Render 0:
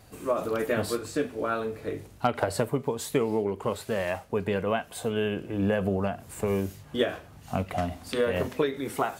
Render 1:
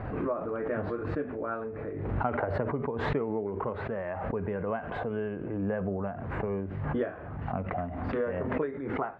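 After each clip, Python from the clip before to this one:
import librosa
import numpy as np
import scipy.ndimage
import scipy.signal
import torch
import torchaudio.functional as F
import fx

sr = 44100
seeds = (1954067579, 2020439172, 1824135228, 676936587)

y = scipy.signal.sosfilt(scipy.signal.butter(4, 1800.0, 'lowpass', fs=sr, output='sos'), x)
y = fx.pre_swell(y, sr, db_per_s=34.0)
y = y * 10.0 ** (-5.5 / 20.0)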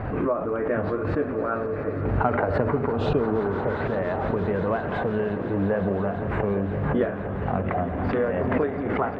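y = fx.quant_float(x, sr, bits=8)
y = fx.spec_repair(y, sr, seeds[0], start_s=3.0, length_s=0.74, low_hz=850.0, high_hz=2400.0, source='both')
y = fx.echo_swell(y, sr, ms=172, loudest=5, wet_db=-15.5)
y = y * 10.0 ** (6.5 / 20.0)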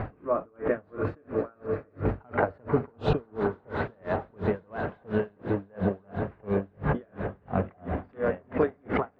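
y = x * 10.0 ** (-36 * (0.5 - 0.5 * np.cos(2.0 * np.pi * 2.9 * np.arange(len(x)) / sr)) / 20.0)
y = y * 10.0 ** (1.5 / 20.0)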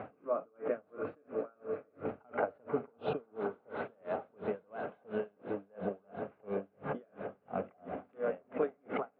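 y = fx.cabinet(x, sr, low_hz=290.0, low_slope=12, high_hz=3100.0, hz=(350.0, 980.0, 1800.0), db=(-6, -7, -10))
y = y * 10.0 ** (-5.0 / 20.0)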